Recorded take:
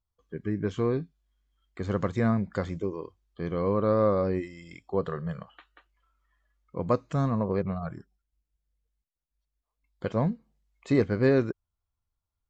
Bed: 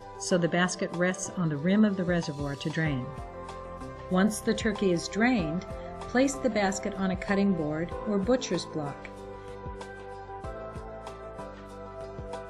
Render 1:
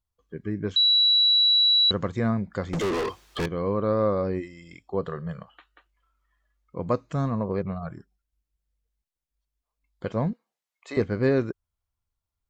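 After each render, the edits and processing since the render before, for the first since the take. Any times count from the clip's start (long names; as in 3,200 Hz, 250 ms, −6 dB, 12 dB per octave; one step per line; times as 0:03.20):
0:00.76–0:01.91: beep over 3,920 Hz −16 dBFS
0:02.73–0:03.46: mid-hump overdrive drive 40 dB, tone 6,500 Hz, clips at −19.5 dBFS
0:10.33–0:10.97: high-pass filter 650 Hz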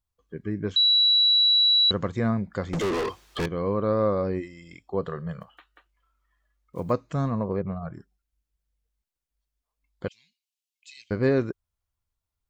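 0:05.41–0:06.92: one scale factor per block 7 bits
0:07.53–0:07.94: low-pass filter 1,600 Hz 6 dB per octave
0:10.08–0:11.11: elliptic high-pass filter 2,600 Hz, stop band 50 dB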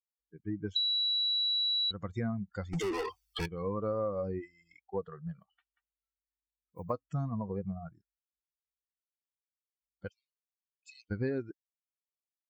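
spectral dynamics exaggerated over time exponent 2
downward compressor 6 to 1, threshold −30 dBFS, peak gain reduction 11 dB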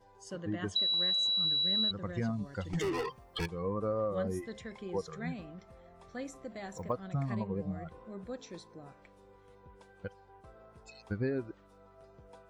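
mix in bed −17 dB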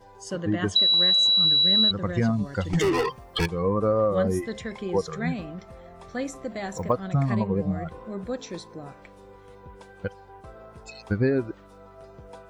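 level +10.5 dB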